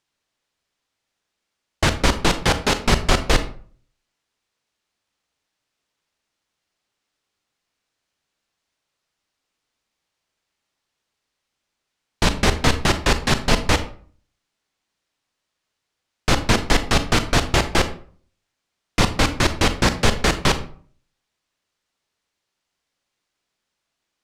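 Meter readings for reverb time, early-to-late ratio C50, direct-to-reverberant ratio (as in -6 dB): 0.45 s, 12.5 dB, 10.0 dB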